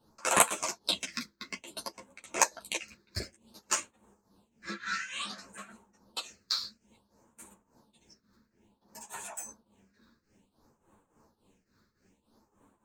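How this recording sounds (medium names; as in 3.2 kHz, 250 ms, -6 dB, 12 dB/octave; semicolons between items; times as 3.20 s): phasing stages 6, 0.57 Hz, lowest notch 760–4800 Hz; tremolo triangle 3.5 Hz, depth 85%; a shimmering, thickened sound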